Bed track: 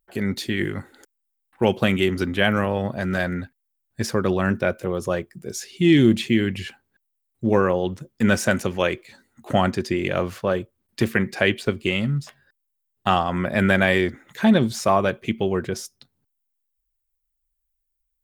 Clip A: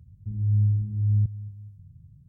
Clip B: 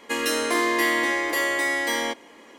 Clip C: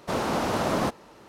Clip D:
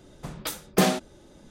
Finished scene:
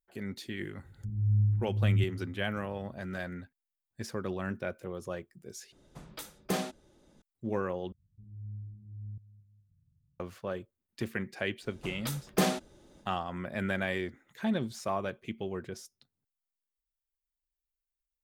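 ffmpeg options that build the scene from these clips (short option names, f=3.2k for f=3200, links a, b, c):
-filter_complex "[1:a]asplit=2[a][b];[4:a]asplit=2[c][d];[0:a]volume=-14dB[e];[b]equalizer=f=89:t=o:w=2:g=-4[f];[e]asplit=3[g][h][i];[g]atrim=end=5.724[j];[c]atrim=end=1.5,asetpts=PTS-STARTPTS,volume=-11dB[k];[h]atrim=start=7.216:end=7.924[l];[f]atrim=end=2.28,asetpts=PTS-STARTPTS,volume=-17dB[m];[i]atrim=start=10.196[n];[a]atrim=end=2.28,asetpts=PTS-STARTPTS,volume=-4.5dB,afade=t=in:d=0.004:c=hsin,afade=t=out:st=2.276:d=0.004:c=hsin,adelay=780[o];[d]atrim=end=1.5,asetpts=PTS-STARTPTS,volume=-6dB,afade=t=in:d=0.1,afade=t=out:st=1.4:d=0.1,adelay=11600[p];[j][k]acrossfade=d=0.004:c1=hsin:c2=hsin[q];[q][l]acrossfade=d=0.004:c1=hsin:c2=hsin[r];[r][m]acrossfade=d=0.004:c1=hsin:c2=hsin[s];[s][n]acrossfade=d=0.004:c1=hsin:c2=hsin[t];[t][o][p]amix=inputs=3:normalize=0"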